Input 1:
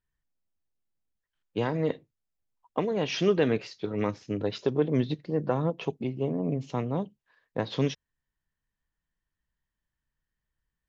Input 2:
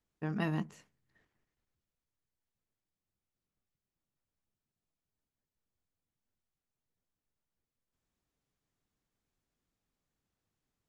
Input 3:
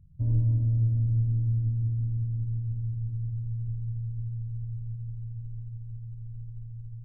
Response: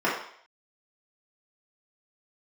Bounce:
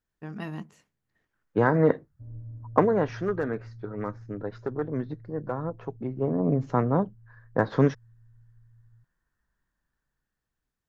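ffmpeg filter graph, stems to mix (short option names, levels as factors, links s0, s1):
-filter_complex "[0:a]aeval=exprs='0.168*(abs(mod(val(0)/0.168+3,4)-2)-1)':c=same,dynaudnorm=f=290:g=9:m=4.47,highshelf=f=2100:t=q:w=3:g=-11,volume=2,afade=t=out:st=2.79:d=0.42:silence=0.237137,afade=t=in:st=5.91:d=0.66:silence=0.298538[s0];[1:a]volume=0.75[s1];[2:a]equalizer=f=550:t=o:w=0.88:g=5.5,adynamicsmooth=sensitivity=7:basefreq=1000,adelay=2000,volume=0.141[s2];[s0][s1][s2]amix=inputs=3:normalize=0"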